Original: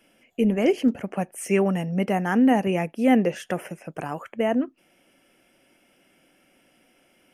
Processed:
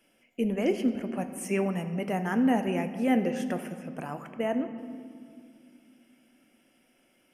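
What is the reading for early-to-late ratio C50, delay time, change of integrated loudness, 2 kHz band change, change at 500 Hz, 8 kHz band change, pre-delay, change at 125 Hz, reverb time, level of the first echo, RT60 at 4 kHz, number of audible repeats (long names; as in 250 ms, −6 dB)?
10.0 dB, no echo audible, −6.0 dB, −5.5 dB, −6.0 dB, −4.0 dB, 3 ms, −6.0 dB, 2.2 s, no echo audible, 1.5 s, no echo audible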